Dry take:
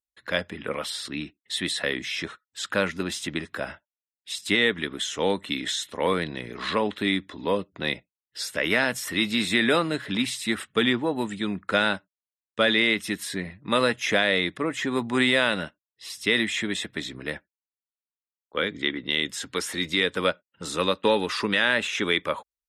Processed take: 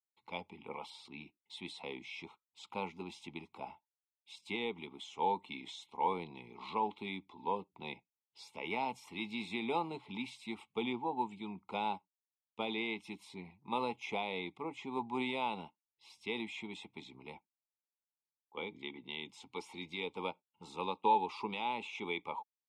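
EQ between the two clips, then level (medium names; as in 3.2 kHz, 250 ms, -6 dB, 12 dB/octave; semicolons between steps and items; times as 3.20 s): static phaser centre 720 Hz, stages 4; dynamic bell 510 Hz, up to +5 dB, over -37 dBFS, Q 1.2; vowel filter u; +7.0 dB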